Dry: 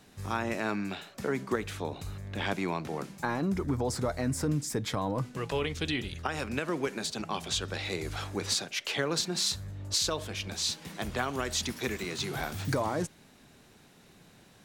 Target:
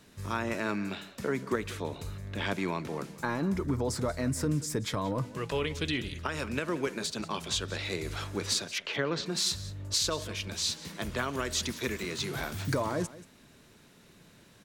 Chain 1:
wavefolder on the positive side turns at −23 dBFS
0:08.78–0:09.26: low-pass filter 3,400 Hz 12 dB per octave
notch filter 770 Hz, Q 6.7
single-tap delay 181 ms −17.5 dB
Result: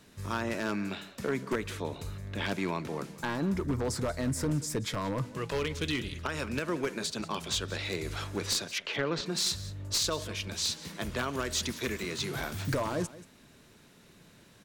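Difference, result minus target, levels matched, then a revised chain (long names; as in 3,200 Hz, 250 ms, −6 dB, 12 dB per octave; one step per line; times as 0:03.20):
wavefolder on the positive side: distortion +34 dB
wavefolder on the positive side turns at −16 dBFS
0:08.78–0:09.26: low-pass filter 3,400 Hz 12 dB per octave
notch filter 770 Hz, Q 6.7
single-tap delay 181 ms −17.5 dB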